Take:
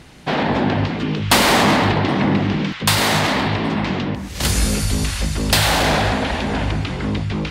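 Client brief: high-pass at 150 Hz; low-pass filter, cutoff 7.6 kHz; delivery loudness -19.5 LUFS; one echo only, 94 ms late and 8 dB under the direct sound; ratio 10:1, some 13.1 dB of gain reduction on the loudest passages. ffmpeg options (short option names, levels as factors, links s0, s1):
-af "highpass=150,lowpass=7600,acompressor=threshold=0.0631:ratio=10,aecho=1:1:94:0.398,volume=2.37"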